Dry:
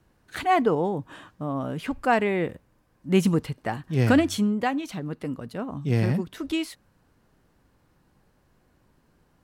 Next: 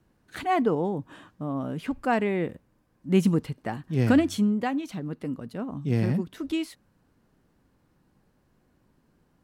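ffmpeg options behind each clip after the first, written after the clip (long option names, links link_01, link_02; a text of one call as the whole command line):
ffmpeg -i in.wav -af "equalizer=frequency=230:width_type=o:width=1.6:gain=5,volume=-4.5dB" out.wav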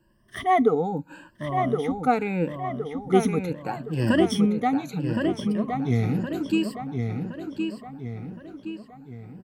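ffmpeg -i in.wav -filter_complex "[0:a]afftfilt=real='re*pow(10,20/40*sin(2*PI*(1.3*log(max(b,1)*sr/1024/100)/log(2)-(0.75)*(pts-256)/sr)))':imag='im*pow(10,20/40*sin(2*PI*(1.3*log(max(b,1)*sr/1024/100)/log(2)-(0.75)*(pts-256)/sr)))':win_size=1024:overlap=0.75,asplit=2[link_01][link_02];[link_02]adelay=1067,lowpass=frequency=4300:poles=1,volume=-5dB,asplit=2[link_03][link_04];[link_04]adelay=1067,lowpass=frequency=4300:poles=1,volume=0.48,asplit=2[link_05][link_06];[link_06]adelay=1067,lowpass=frequency=4300:poles=1,volume=0.48,asplit=2[link_07][link_08];[link_08]adelay=1067,lowpass=frequency=4300:poles=1,volume=0.48,asplit=2[link_09][link_10];[link_10]adelay=1067,lowpass=frequency=4300:poles=1,volume=0.48,asplit=2[link_11][link_12];[link_12]adelay=1067,lowpass=frequency=4300:poles=1,volume=0.48[link_13];[link_03][link_05][link_07][link_09][link_11][link_13]amix=inputs=6:normalize=0[link_14];[link_01][link_14]amix=inputs=2:normalize=0,volume=-2.5dB" out.wav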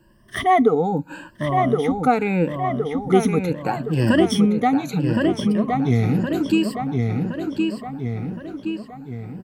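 ffmpeg -i in.wav -af "acompressor=threshold=-29dB:ratio=1.5,volume=8.5dB" out.wav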